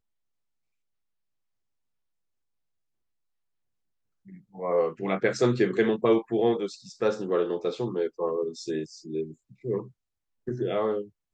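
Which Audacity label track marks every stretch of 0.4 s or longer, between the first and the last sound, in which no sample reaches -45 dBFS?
9.880000	10.470000	silence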